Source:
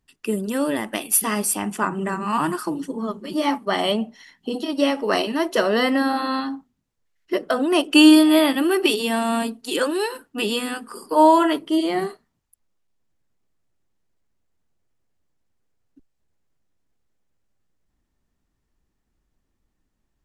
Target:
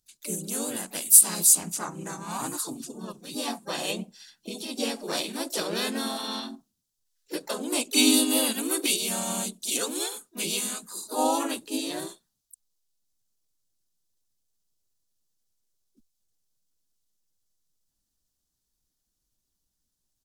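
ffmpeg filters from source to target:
-filter_complex "[0:a]aexciter=amount=4.8:drive=7.7:freq=3.7k,asplit=4[a][b][c][d];[b]asetrate=35002,aresample=44100,atempo=1.25992,volume=-7dB[e];[c]asetrate=37084,aresample=44100,atempo=1.18921,volume=0dB[f];[d]asetrate=58866,aresample=44100,atempo=0.749154,volume=-10dB[g];[a][e][f][g]amix=inputs=4:normalize=0,volume=-15dB"

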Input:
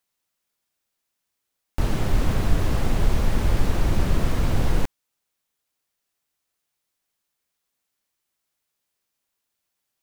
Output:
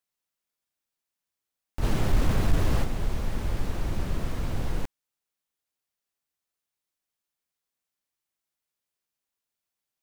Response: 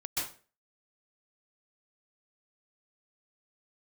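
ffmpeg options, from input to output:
-filter_complex "[0:a]asplit=3[a][b][c];[a]afade=t=out:st=1.82:d=0.02[d];[b]acontrast=87,afade=t=in:st=1.82:d=0.02,afade=t=out:st=2.83:d=0.02[e];[c]afade=t=in:st=2.83:d=0.02[f];[d][e][f]amix=inputs=3:normalize=0,volume=-8dB"

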